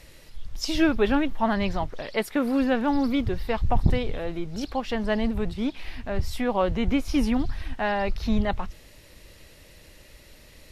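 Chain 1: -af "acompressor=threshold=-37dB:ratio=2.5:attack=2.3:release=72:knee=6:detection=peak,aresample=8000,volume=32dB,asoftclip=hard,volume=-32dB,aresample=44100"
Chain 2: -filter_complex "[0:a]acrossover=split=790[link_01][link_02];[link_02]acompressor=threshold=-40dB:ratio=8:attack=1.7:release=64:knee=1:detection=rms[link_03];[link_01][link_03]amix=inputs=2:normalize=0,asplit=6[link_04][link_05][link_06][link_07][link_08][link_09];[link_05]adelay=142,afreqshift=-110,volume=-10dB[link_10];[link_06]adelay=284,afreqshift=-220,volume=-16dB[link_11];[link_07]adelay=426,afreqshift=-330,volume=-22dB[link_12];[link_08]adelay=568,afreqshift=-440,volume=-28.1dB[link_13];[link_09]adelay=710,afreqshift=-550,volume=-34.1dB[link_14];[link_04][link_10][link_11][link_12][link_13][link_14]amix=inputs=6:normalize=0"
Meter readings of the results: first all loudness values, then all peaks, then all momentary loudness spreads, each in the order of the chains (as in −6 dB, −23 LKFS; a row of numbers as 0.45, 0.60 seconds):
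−39.0, −27.0 LKFS; −29.0, −7.5 dBFS; 16, 9 LU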